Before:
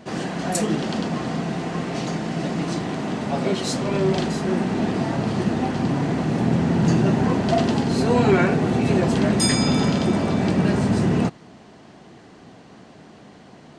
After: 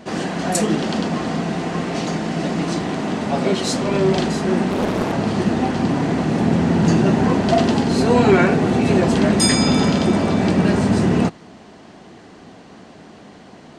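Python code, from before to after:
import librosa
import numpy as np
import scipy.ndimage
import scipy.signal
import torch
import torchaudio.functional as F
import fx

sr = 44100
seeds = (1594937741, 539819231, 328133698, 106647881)

y = fx.peak_eq(x, sr, hz=130.0, db=-7.0, octaves=0.34)
y = fx.doppler_dist(y, sr, depth_ms=1.0, at=(4.7, 5.13))
y = F.gain(torch.from_numpy(y), 4.0).numpy()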